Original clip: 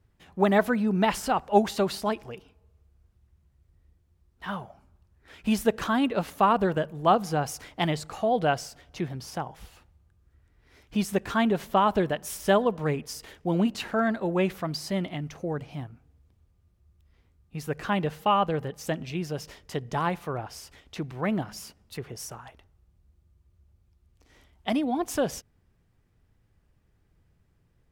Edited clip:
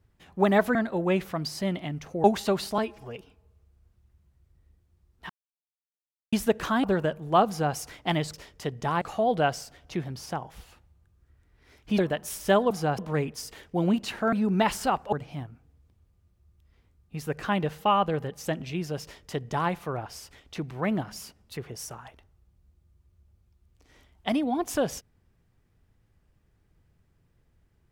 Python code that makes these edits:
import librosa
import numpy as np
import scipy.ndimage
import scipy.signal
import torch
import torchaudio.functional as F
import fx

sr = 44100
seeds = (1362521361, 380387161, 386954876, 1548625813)

y = fx.edit(x, sr, fx.swap(start_s=0.75, length_s=0.8, other_s=14.04, other_length_s=1.49),
    fx.stretch_span(start_s=2.09, length_s=0.25, factor=1.5),
    fx.silence(start_s=4.48, length_s=1.03),
    fx.cut(start_s=6.02, length_s=0.54),
    fx.duplicate(start_s=7.2, length_s=0.28, to_s=12.7),
    fx.cut(start_s=11.03, length_s=0.95),
    fx.duplicate(start_s=19.43, length_s=0.68, to_s=8.06), tone=tone)